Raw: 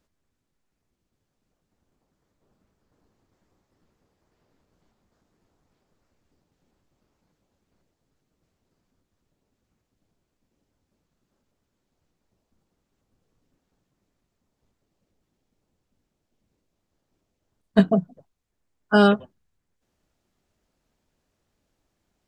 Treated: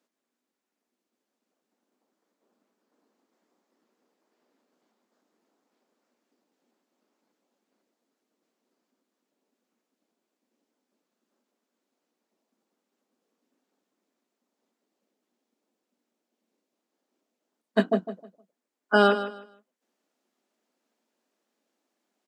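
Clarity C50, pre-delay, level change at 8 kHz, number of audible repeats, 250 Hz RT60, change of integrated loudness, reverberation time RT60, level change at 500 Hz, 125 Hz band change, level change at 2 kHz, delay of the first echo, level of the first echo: none, none, n/a, 2, none, -3.5 dB, none, -2.0 dB, n/a, 0.0 dB, 0.155 s, -12.0 dB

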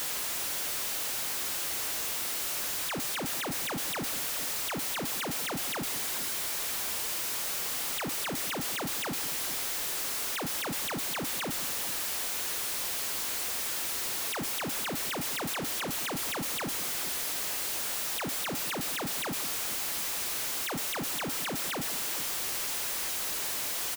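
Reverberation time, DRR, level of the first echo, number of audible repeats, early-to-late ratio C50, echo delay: none, none, -19.5 dB, 2, none, 0.215 s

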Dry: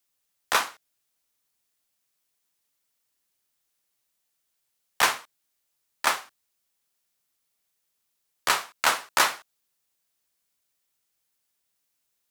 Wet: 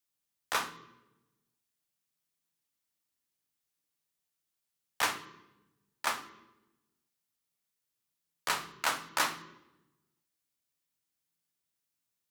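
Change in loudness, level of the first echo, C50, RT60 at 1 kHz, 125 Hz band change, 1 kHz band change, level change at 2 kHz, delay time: -8.5 dB, none, 14.5 dB, 0.95 s, -1.5 dB, -8.0 dB, -8.5 dB, none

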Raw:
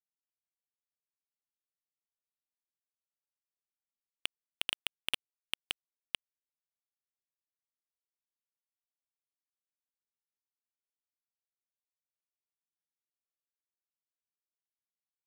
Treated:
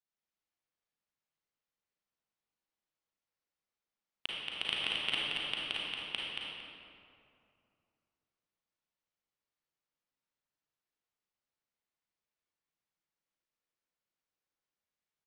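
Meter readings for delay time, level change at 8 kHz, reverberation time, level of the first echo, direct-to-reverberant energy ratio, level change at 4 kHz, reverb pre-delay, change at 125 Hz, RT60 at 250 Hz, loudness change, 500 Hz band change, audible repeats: 0.228 s, -7.0 dB, 2.5 s, -3.5 dB, -6.5 dB, +4.0 dB, 33 ms, +8.5 dB, 2.6 s, +4.0 dB, +7.5 dB, 1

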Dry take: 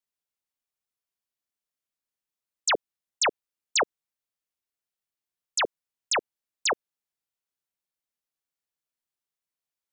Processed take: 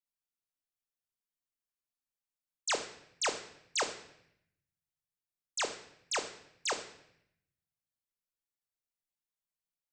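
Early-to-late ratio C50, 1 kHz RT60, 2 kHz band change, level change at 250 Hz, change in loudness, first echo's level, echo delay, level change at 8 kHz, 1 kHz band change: 10.5 dB, 0.70 s, -8.0 dB, -6.5 dB, -8.0 dB, none, none, -6.5 dB, -8.0 dB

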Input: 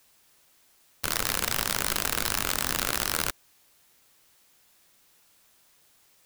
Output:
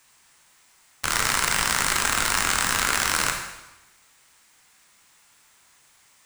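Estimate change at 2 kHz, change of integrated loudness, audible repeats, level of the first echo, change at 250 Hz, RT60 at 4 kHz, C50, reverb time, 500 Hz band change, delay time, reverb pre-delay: +8.5 dB, +5.0 dB, none, none, +2.0 dB, 0.95 s, 5.0 dB, 1.0 s, +1.5 dB, none, 7 ms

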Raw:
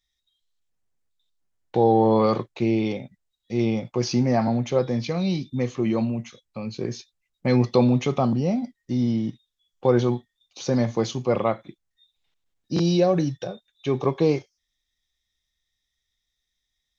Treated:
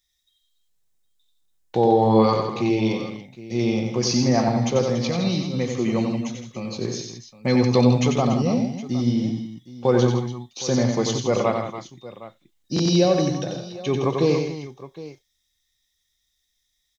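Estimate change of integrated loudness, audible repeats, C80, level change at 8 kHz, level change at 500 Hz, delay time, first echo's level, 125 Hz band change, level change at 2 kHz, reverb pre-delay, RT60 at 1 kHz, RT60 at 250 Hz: +1.5 dB, 4, none, n/a, +1.5 dB, 91 ms, -5.0 dB, +2.0 dB, +3.5 dB, none, none, none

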